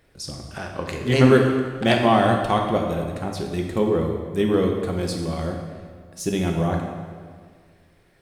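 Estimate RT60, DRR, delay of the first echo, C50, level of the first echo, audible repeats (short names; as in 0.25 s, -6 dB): 1.8 s, 1.5 dB, none, 4.0 dB, none, none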